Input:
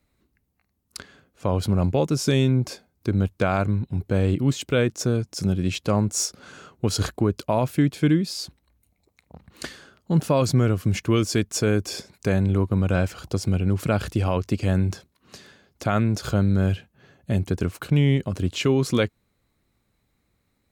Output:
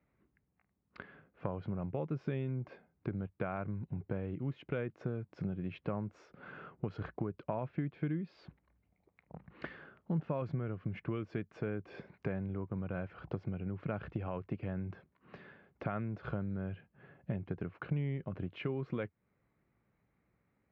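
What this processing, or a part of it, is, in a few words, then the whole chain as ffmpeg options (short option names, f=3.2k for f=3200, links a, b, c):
bass amplifier: -af "acompressor=threshold=-31dB:ratio=4,highpass=64,equalizer=f=82:t=q:w=4:g=-8,equalizer=f=160:t=q:w=4:g=3,equalizer=f=260:t=q:w=4:g=-3,lowpass=f=2.3k:w=0.5412,lowpass=f=2.3k:w=1.3066,volume=-4dB"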